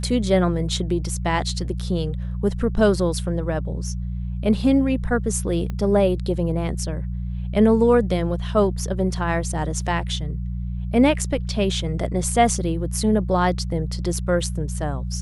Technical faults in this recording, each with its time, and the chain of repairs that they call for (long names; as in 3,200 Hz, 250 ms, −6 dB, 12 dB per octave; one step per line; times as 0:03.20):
mains hum 60 Hz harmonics 3 −27 dBFS
0:05.70: click −18 dBFS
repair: click removal
hum removal 60 Hz, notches 3